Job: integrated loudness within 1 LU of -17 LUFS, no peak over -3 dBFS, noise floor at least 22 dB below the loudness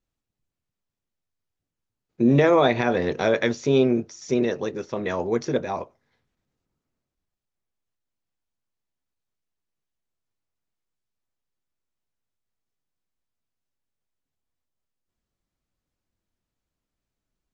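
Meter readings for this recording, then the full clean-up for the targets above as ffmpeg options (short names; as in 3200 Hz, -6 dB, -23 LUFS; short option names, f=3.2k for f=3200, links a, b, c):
loudness -22.5 LUFS; peak -7.0 dBFS; loudness target -17.0 LUFS
-> -af "volume=5.5dB,alimiter=limit=-3dB:level=0:latency=1"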